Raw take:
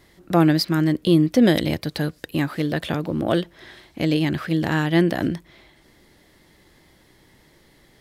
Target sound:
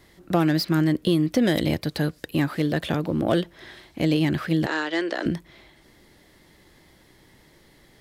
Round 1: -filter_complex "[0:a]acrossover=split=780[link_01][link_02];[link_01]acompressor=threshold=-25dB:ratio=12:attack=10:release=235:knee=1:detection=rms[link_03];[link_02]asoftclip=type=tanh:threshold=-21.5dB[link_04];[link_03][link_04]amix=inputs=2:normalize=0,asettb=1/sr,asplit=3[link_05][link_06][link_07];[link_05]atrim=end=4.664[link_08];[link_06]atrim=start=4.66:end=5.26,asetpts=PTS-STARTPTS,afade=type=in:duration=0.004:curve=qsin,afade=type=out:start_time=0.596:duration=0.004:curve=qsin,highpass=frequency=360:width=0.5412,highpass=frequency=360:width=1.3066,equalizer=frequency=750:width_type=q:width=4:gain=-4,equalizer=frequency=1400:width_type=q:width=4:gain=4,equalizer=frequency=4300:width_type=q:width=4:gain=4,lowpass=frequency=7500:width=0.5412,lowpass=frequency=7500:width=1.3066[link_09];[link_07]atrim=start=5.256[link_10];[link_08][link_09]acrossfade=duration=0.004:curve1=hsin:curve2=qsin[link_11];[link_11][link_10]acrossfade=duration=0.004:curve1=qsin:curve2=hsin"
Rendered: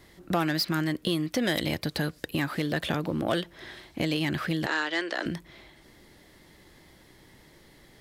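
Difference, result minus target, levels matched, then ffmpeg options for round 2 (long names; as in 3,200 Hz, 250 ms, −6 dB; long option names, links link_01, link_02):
downward compressor: peak gain reduction +8 dB
-filter_complex "[0:a]acrossover=split=780[link_01][link_02];[link_01]acompressor=threshold=-16dB:ratio=12:attack=10:release=235:knee=1:detection=rms[link_03];[link_02]asoftclip=type=tanh:threshold=-21.5dB[link_04];[link_03][link_04]amix=inputs=2:normalize=0,asettb=1/sr,asplit=3[link_05][link_06][link_07];[link_05]atrim=end=4.664[link_08];[link_06]atrim=start=4.66:end=5.26,asetpts=PTS-STARTPTS,afade=type=in:duration=0.004:curve=qsin,afade=type=out:start_time=0.596:duration=0.004:curve=qsin,highpass=frequency=360:width=0.5412,highpass=frequency=360:width=1.3066,equalizer=frequency=750:width_type=q:width=4:gain=-4,equalizer=frequency=1400:width_type=q:width=4:gain=4,equalizer=frequency=4300:width_type=q:width=4:gain=4,lowpass=frequency=7500:width=0.5412,lowpass=frequency=7500:width=1.3066[link_09];[link_07]atrim=start=5.256[link_10];[link_08][link_09]acrossfade=duration=0.004:curve1=hsin:curve2=qsin[link_11];[link_11][link_10]acrossfade=duration=0.004:curve1=qsin:curve2=hsin"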